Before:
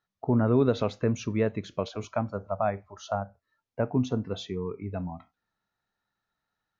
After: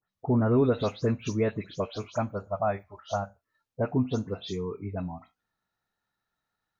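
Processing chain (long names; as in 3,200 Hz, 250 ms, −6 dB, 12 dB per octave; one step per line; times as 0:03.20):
every frequency bin delayed by itself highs late, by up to 131 ms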